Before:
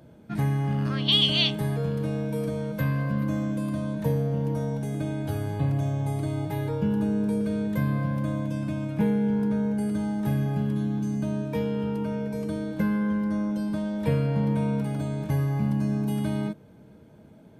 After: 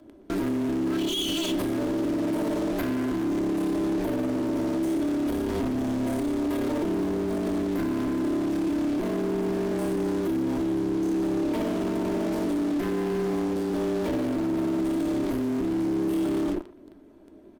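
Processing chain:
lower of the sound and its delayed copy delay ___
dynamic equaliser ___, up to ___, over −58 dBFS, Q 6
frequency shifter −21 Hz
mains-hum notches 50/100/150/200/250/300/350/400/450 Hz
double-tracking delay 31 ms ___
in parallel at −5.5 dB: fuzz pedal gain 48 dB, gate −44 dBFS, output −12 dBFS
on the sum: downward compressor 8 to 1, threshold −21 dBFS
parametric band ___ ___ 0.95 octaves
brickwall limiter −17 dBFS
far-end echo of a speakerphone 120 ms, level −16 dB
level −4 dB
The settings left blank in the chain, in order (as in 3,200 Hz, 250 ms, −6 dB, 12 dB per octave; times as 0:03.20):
3 ms, 3,200 Hz, +3 dB, −14 dB, 330 Hz, +13 dB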